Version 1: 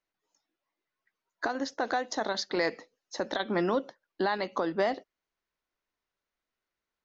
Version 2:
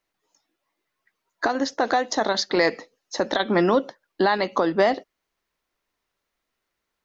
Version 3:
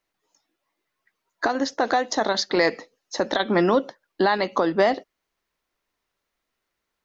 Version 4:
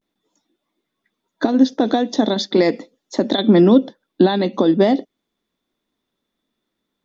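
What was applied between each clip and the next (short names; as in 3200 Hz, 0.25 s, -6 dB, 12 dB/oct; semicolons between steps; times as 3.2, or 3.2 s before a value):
notch 1500 Hz, Q 26; gain +8.5 dB
nothing audible
vibrato 0.42 Hz 68 cents; dynamic EQ 1300 Hz, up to -5 dB, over -38 dBFS, Q 1.5; small resonant body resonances 230/3500 Hz, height 17 dB, ringing for 20 ms; gain -2.5 dB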